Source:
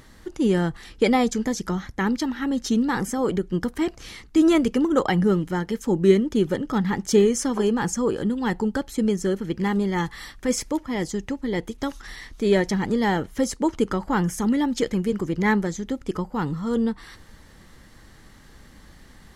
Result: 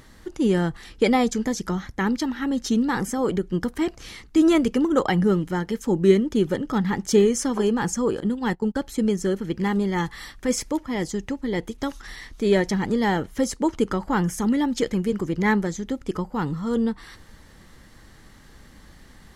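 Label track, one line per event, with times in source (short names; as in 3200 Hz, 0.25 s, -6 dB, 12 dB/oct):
8.200000	8.760000	gate -28 dBFS, range -18 dB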